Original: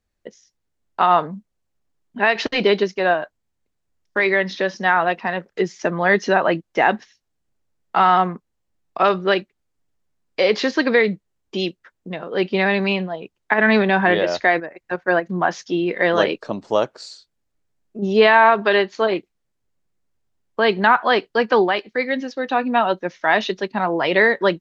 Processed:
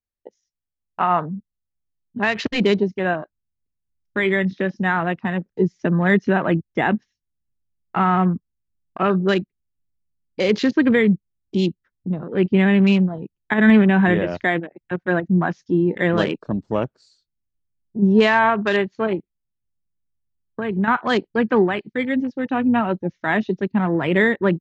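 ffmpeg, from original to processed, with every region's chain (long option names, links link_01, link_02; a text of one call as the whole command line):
ffmpeg -i in.wav -filter_complex "[0:a]asettb=1/sr,asplit=3[link_01][link_02][link_03];[link_01]atrim=end=19.154[link_04];[link_02]atrim=start=19.15:end=20.88,asetpts=PTS-STARTPTS,afade=type=in:duration=0.004:curve=qsin,afade=type=out:start_time=1.726:duration=0.004:curve=qsin,lowpass=3100,acompressor=threshold=-24dB:ratio=2:attack=3.2:release=140:knee=1:detection=peak[link_05];[link_03]atrim=start=20.876[link_06];[link_04][link_05]acrossfade=duration=0.004:curve1=hsin:curve2=qsin[link_07];[link_07][link_06]acrossfade=duration=0.004:curve1=qsin:curve2=hsin,afwtdn=0.0355,asubboost=boost=6.5:cutoff=240,volume=-2.5dB" out.wav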